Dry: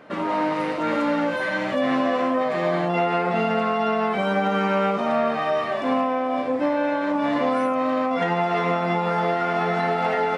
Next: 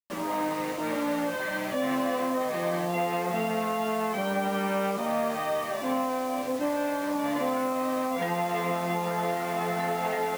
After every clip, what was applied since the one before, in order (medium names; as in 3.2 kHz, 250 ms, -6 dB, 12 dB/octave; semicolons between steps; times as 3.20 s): band-stop 1.4 kHz, Q 15; bit crusher 6-bit; trim -6 dB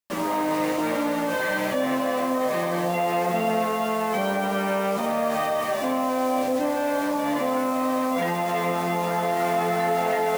in parallel at -3 dB: compressor with a negative ratio -31 dBFS; on the sum: band-passed feedback delay 136 ms, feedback 82%, band-pass 560 Hz, level -10 dB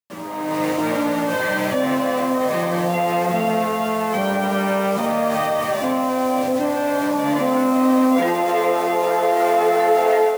level rider gain up to 12.5 dB; high-pass sweep 97 Hz -> 410 Hz, 6.85–8.66 s; trim -7 dB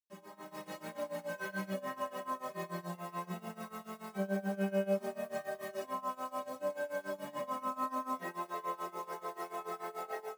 inharmonic resonator 190 Hz, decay 0.2 s, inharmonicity 0.008; tremolo 6.9 Hz, depth 90%; trim -5.5 dB